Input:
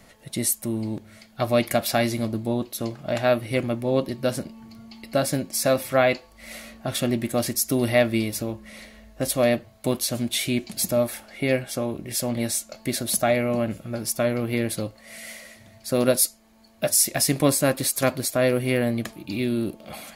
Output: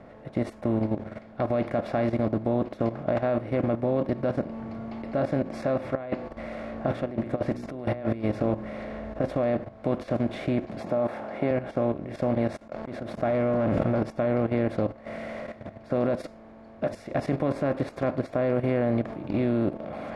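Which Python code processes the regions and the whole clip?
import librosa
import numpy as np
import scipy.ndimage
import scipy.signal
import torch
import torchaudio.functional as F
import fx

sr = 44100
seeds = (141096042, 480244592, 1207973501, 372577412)

y = fx.chain(x, sr, fx.over_compress(threshold_db=-29.0, ratio=-1.0),
    fx.hum_notches(base_hz=60, count=8), at=(5.95, 9.24))
y = fx.chain(y, sr, fx.highpass(hz=140.0, slope=12),
    fx.peak_eq(hz=870.0, db=8.0, octaves=1.1), at=(10.8, 11.51))
y = fx.chain(y, sr, fx.auto_swell(attack_ms=644.0),
    fx.leveller(passes=2),
    fx.sustainer(db_per_s=32.0), at=(12.57, 14.03))
y = fx.bin_compress(y, sr, power=0.6)
y = scipy.signal.sosfilt(scipy.signal.butter(2, 1300.0, 'lowpass', fs=sr, output='sos'), y)
y = fx.level_steps(y, sr, step_db=12)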